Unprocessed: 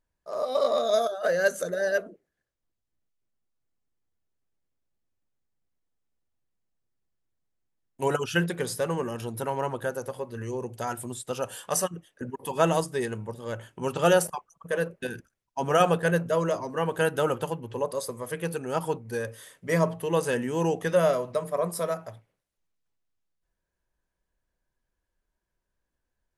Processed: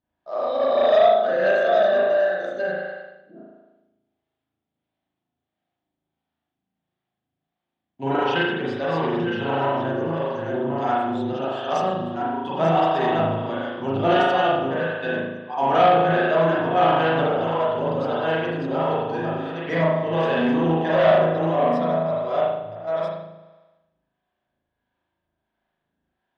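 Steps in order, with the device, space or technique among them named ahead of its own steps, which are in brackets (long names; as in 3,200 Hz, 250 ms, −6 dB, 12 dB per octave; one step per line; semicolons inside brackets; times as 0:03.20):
delay that plays each chunk backwards 679 ms, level −4 dB
parametric band 280 Hz +5.5 dB 1 octave
0:15.68–0:16.53: double-tracking delay 48 ms −8 dB
spring reverb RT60 1.1 s, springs 37 ms, chirp 65 ms, DRR −6.5 dB
guitar amplifier with harmonic tremolo (two-band tremolo in antiphase 1.5 Hz, depth 50%, crossover 410 Hz; soft clipping −12.5 dBFS, distortion −15 dB; loudspeaker in its box 100–4,300 Hz, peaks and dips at 460 Hz −6 dB, 730 Hz +9 dB, 3,400 Hz +6 dB)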